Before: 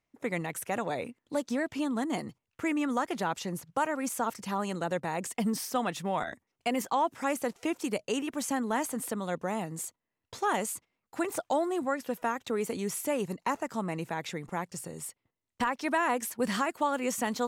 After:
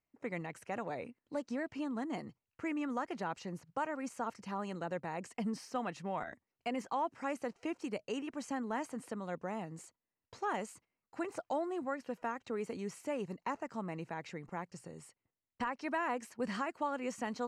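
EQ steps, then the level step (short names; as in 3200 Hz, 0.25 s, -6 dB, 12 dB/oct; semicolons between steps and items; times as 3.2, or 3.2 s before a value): air absorption 86 m; notch 3500 Hz, Q 5.7; -7.0 dB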